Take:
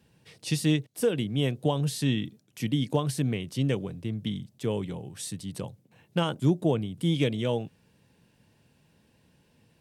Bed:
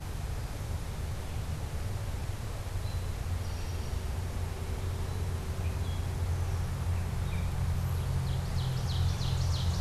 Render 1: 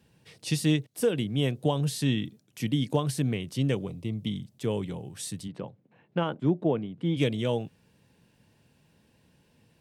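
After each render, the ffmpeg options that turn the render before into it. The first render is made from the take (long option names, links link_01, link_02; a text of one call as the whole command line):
ffmpeg -i in.wav -filter_complex "[0:a]asettb=1/sr,asplit=3[link_01][link_02][link_03];[link_01]atrim=end=3.884[link_04];[link_02]atrim=start=3.88:end=4.34,asetpts=PTS-STARTPTS,afade=type=in:duration=0.004:curve=qsin,afade=type=out:start_time=0.456:duration=0.004:curve=qsin,asuperstop=centerf=1600:order=8:qfactor=2.8[link_05];[link_03]atrim=start=4.336[link_06];[link_04][link_05]acrossfade=duration=0.004:curve1=hsin:curve2=qsin[link_07];[link_07][link_06]acrossfade=duration=0.004:curve1=qsin:curve2=hsin,asplit=3[link_08][link_09][link_10];[link_08]afade=type=out:start_time=5.47:duration=0.02[link_11];[link_09]highpass=160,lowpass=2200,afade=type=in:start_time=5.47:duration=0.02,afade=type=out:start_time=7.16:duration=0.02[link_12];[link_10]afade=type=in:start_time=7.16:duration=0.02[link_13];[link_11][link_12][link_13]amix=inputs=3:normalize=0" out.wav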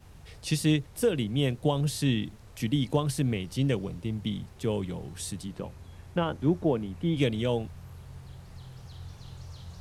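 ffmpeg -i in.wav -i bed.wav -filter_complex "[1:a]volume=-14dB[link_01];[0:a][link_01]amix=inputs=2:normalize=0" out.wav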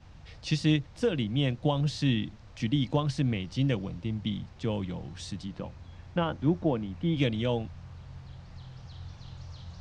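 ffmpeg -i in.wav -af "lowpass=frequency=5900:width=0.5412,lowpass=frequency=5900:width=1.3066,equalizer=frequency=410:width_type=o:width=0.2:gain=-11" out.wav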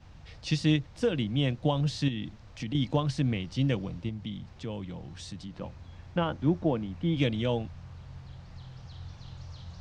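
ffmpeg -i in.wav -filter_complex "[0:a]asettb=1/sr,asplit=3[link_01][link_02][link_03];[link_01]atrim=end=2.084[link_04];[link_02]atrim=start=2.08:end=2.75,asetpts=PTS-STARTPTS,afade=type=in:duration=0.004:curve=qsin,afade=type=out:start_time=0.666:duration=0.004:curve=qsin,acompressor=threshold=-30dB:ratio=5:attack=3.2:release=140:knee=1:detection=peak[link_05];[link_03]atrim=start=2.746[link_06];[link_04][link_05]acrossfade=duration=0.004:curve1=hsin:curve2=qsin[link_07];[link_07][link_06]acrossfade=duration=0.004:curve1=qsin:curve2=hsin,asettb=1/sr,asplit=3[link_08][link_09][link_10];[link_08]atrim=end=4.094[link_11];[link_09]atrim=start=4.09:end=5.61,asetpts=PTS-STARTPTS,afade=type=in:duration=0.004:curve=qsin,afade=type=out:start_time=1.516:duration=0.004:curve=qsin,acompressor=threshold=-42dB:ratio=1.5:attack=3.2:release=140:knee=1:detection=peak[link_12];[link_10]atrim=start=5.606[link_13];[link_11][link_12]acrossfade=duration=0.004:curve1=hsin:curve2=qsin[link_14];[link_14][link_13]acrossfade=duration=0.004:curve1=qsin:curve2=hsin" out.wav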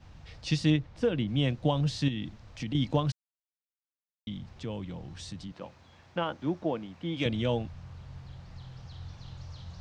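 ffmpeg -i in.wav -filter_complex "[0:a]asettb=1/sr,asplit=3[link_01][link_02][link_03];[link_01]atrim=end=0.704[link_04];[link_02]atrim=start=0.7:end=1.28,asetpts=PTS-STARTPTS,afade=type=in:duration=0.004:curve=qsin,afade=type=out:start_time=0.576:duration=0.004:curve=qsin,lowpass=frequency=2900:poles=1[link_05];[link_03]atrim=start=1.276[link_06];[link_04][link_05]acrossfade=duration=0.004:curve1=hsin:curve2=qsin[link_07];[link_07][link_06]acrossfade=duration=0.004:curve1=qsin:curve2=hsin,asettb=1/sr,asplit=3[link_08][link_09][link_10];[link_08]atrim=end=5.524[link_11];[link_09]atrim=start=5.52:end=7.26,asetpts=PTS-STARTPTS,afade=type=in:duration=0.004:curve=qsin,afade=type=out:start_time=1.736:duration=0.004:curve=qsin,highpass=frequency=380:poles=1[link_12];[link_10]atrim=start=7.256[link_13];[link_11][link_12]acrossfade=duration=0.004:curve1=hsin:curve2=qsin[link_14];[link_14][link_13]acrossfade=duration=0.004:curve1=qsin:curve2=hsin,asplit=3[link_15][link_16][link_17];[link_15]atrim=end=3.12,asetpts=PTS-STARTPTS,afade=type=out:start_time=3.116:duration=0.004:curve=hsin[link_18];[link_16]atrim=start=3.12:end=4.27,asetpts=PTS-STARTPTS,volume=0[link_19];[link_17]atrim=start=4.27,asetpts=PTS-STARTPTS,afade=type=in:duration=0.004:curve=hsin[link_20];[link_18][link_19][link_20]concat=n=3:v=0:a=1" out.wav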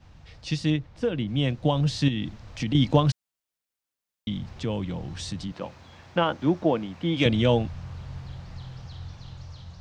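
ffmpeg -i in.wav -af "dynaudnorm=framelen=540:gausssize=7:maxgain=8dB" out.wav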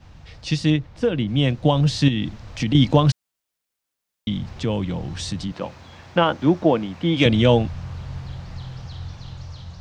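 ffmpeg -i in.wav -af "volume=5.5dB,alimiter=limit=-3dB:level=0:latency=1" out.wav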